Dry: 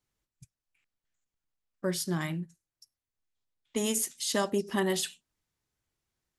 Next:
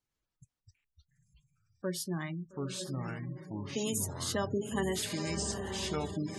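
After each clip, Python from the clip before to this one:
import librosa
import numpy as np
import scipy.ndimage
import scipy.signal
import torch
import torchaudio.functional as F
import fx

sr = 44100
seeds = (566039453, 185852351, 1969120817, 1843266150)

y = fx.echo_diffused(x, sr, ms=901, feedback_pct=51, wet_db=-5.5)
y = fx.echo_pitch(y, sr, ms=114, semitones=-5, count=3, db_per_echo=-3.0)
y = fx.spec_gate(y, sr, threshold_db=-25, keep='strong')
y = y * librosa.db_to_amplitude(-4.5)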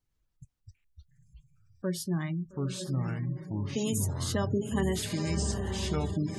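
y = fx.low_shelf(x, sr, hz=190.0, db=10.0)
y = np.clip(y, -10.0 ** (-17.5 / 20.0), 10.0 ** (-17.5 / 20.0))
y = fx.low_shelf(y, sr, hz=64.0, db=6.0)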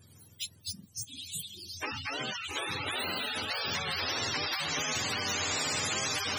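y = fx.octave_mirror(x, sr, pivot_hz=690.0)
y = fx.spectral_comp(y, sr, ratio=10.0)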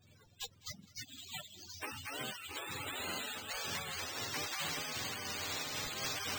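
y = fx.echo_feedback(x, sr, ms=205, feedback_pct=43, wet_db=-22.0)
y = np.repeat(y[::4], 4)[:len(y)]
y = fx.am_noise(y, sr, seeds[0], hz=5.7, depth_pct=60)
y = y * librosa.db_to_amplitude(-4.0)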